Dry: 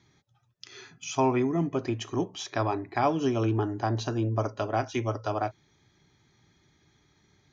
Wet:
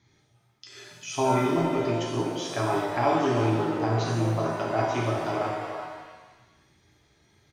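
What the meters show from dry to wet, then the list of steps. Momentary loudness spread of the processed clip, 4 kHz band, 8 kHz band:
13 LU, +3.0 dB, n/a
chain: speakerphone echo 0.38 s, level -8 dB; shimmer reverb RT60 1.1 s, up +7 st, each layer -8 dB, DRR -3 dB; gain -3 dB

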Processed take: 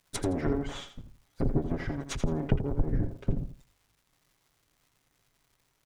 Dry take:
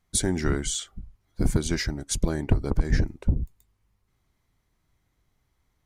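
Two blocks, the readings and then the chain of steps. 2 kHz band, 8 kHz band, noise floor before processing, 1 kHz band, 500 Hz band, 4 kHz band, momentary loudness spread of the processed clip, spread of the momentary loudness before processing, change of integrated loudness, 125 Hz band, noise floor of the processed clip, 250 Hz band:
-8.0 dB, -15.0 dB, -73 dBFS, -1.5 dB, -2.0 dB, -10.5 dB, 12 LU, 5 LU, -5.0 dB, -4.5 dB, -73 dBFS, -3.0 dB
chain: minimum comb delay 7.2 ms; notch 4300 Hz, Q 21; treble ducked by the level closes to 600 Hz, closed at -21.5 dBFS; tone controls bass -4 dB, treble +2 dB; crackle 350/s -56 dBFS; feedback echo 83 ms, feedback 21%, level -10 dB

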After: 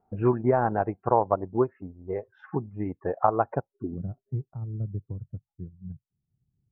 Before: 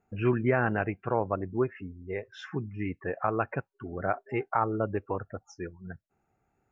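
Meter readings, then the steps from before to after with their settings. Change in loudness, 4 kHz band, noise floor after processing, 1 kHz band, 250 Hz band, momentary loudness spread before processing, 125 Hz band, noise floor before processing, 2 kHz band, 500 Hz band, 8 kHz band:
+3.0 dB, under -20 dB, under -85 dBFS, +4.5 dB, +1.5 dB, 15 LU, +2.5 dB, -78 dBFS, -8.0 dB, +3.0 dB, n/a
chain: transient shaper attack +4 dB, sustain -5 dB; low-pass sweep 890 Hz -> 140 Hz, 3.56–4.08

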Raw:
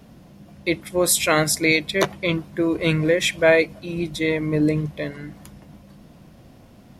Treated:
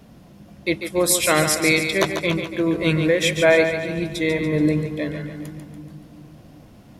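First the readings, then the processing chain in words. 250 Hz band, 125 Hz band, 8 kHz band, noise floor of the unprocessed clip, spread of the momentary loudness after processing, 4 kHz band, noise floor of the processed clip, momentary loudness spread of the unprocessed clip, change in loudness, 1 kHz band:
+1.0 dB, +1.0 dB, +1.0 dB, -49 dBFS, 16 LU, +1.0 dB, -47 dBFS, 12 LU, +1.0 dB, +1.0 dB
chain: split-band echo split 300 Hz, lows 0.388 s, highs 0.143 s, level -7.5 dB

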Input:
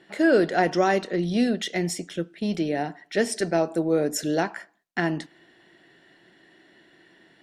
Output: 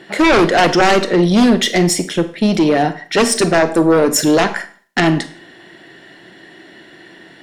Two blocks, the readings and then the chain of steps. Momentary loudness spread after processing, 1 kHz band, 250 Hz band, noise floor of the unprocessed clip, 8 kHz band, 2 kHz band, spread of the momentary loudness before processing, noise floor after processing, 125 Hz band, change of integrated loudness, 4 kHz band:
7 LU, +12.0 dB, +11.0 dB, -60 dBFS, +14.0 dB, +11.5 dB, 10 LU, -43 dBFS, +12.0 dB, +11.0 dB, +15.0 dB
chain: added harmonics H 4 -25 dB, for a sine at -7.5 dBFS; sine folder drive 11 dB, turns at -7.5 dBFS; Schroeder reverb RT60 0.43 s, combs from 33 ms, DRR 12 dB

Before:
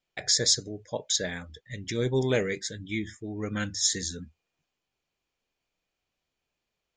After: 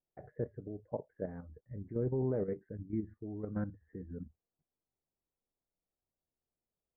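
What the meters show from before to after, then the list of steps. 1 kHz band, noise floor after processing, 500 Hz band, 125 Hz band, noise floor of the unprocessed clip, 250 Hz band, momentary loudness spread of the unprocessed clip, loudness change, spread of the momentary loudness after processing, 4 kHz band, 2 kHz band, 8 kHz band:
-10.0 dB, under -85 dBFS, -7.0 dB, -5.5 dB, -85 dBFS, -5.5 dB, 14 LU, -11.5 dB, 15 LU, under -40 dB, -24.5 dB, under -40 dB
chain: level quantiser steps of 10 dB; Gaussian blur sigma 8.8 samples; gain -1 dB

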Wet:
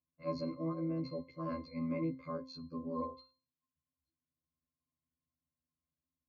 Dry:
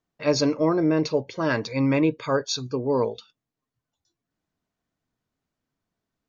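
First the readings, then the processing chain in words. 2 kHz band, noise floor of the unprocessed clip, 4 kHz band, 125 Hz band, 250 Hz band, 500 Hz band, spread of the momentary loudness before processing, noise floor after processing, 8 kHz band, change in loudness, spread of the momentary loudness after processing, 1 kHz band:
-25.0 dB, under -85 dBFS, -22.5 dB, -14.0 dB, -14.5 dB, -18.0 dB, 6 LU, under -85 dBFS, n/a, -16.0 dB, 7 LU, -13.5 dB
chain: robotiser 81.6 Hz; octave resonator C, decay 0.36 s; gain +8 dB

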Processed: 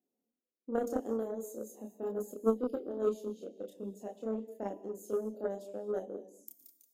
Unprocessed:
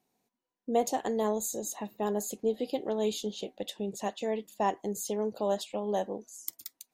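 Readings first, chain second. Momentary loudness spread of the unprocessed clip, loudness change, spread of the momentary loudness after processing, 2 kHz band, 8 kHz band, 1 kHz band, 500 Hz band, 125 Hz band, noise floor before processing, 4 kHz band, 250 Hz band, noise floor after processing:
8 LU, -4.5 dB, 13 LU, under -10 dB, -17.0 dB, -12.0 dB, -3.5 dB, n/a, -85 dBFS, under -20 dB, -3.5 dB, under -85 dBFS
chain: graphic EQ 125/250/500/1000/2000/4000/8000 Hz -10/+7/+7/-11/-12/-12/-4 dB; non-linear reverb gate 0.27 s flat, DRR 10.5 dB; chorus voices 4, 0.4 Hz, delay 29 ms, depth 2.7 ms; HPF 55 Hz; added harmonics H 3 -14 dB, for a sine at -15.5 dBFS

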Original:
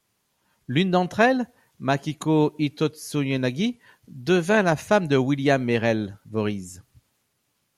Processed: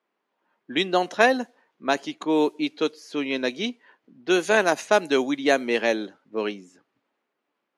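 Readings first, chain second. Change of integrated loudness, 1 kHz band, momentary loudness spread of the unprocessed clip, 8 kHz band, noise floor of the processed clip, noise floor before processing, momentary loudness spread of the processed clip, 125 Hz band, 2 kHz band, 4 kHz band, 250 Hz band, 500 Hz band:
-1.0 dB, +0.5 dB, 9 LU, +1.5 dB, -80 dBFS, -73 dBFS, 11 LU, -18.0 dB, +1.5 dB, +3.0 dB, -3.5 dB, 0.0 dB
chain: HPF 270 Hz 24 dB/oct; high shelf 3200 Hz +6.5 dB; low-pass opened by the level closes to 2200 Hz, open at -15 dBFS; mismatched tape noise reduction decoder only

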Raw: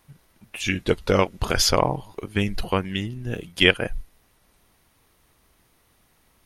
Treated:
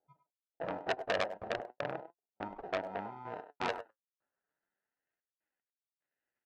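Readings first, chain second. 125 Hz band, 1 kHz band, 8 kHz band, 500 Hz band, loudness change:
-25.5 dB, -10.5 dB, -29.5 dB, -13.0 dB, -15.5 dB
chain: spectral noise reduction 15 dB; resonant high shelf 4600 Hz -6.5 dB, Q 1.5; in parallel at +2.5 dB: compressor, threshold -31 dBFS, peak gain reduction 19.5 dB; on the sum: sample-and-hold 39×; band-pass sweep 710 Hz -> 2000 Hz, 2.72–5.11; step gate "x..xxxxx." 75 bpm -60 dB; flange 0.38 Hz, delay 2.3 ms, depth 7.6 ms, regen +56%; tape spacing loss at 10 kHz 24 dB; speakerphone echo 0.1 s, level -11 dB; core saturation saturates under 2600 Hz; gain +1 dB

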